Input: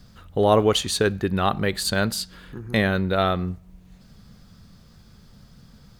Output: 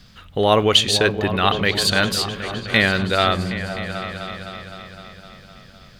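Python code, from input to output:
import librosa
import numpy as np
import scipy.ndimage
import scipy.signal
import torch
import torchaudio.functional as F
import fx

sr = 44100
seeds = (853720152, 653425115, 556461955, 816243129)

p1 = fx.peak_eq(x, sr, hz=2800.0, db=11.0, octaves=1.9)
y = p1 + fx.echo_opening(p1, sr, ms=256, hz=200, octaves=2, feedback_pct=70, wet_db=-6, dry=0)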